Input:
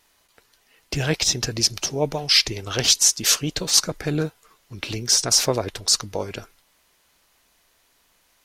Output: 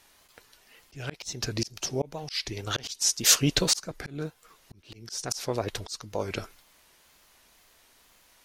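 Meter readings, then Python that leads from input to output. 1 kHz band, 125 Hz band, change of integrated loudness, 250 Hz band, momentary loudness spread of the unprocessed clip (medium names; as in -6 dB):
-6.0 dB, -6.0 dB, -8.0 dB, -4.5 dB, 15 LU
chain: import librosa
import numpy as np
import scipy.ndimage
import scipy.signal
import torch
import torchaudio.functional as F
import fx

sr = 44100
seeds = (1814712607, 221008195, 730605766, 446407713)

y = fx.auto_swell(x, sr, attack_ms=621.0)
y = fx.wow_flutter(y, sr, seeds[0], rate_hz=2.1, depth_cents=87.0)
y = F.gain(torch.from_numpy(y), 2.5).numpy()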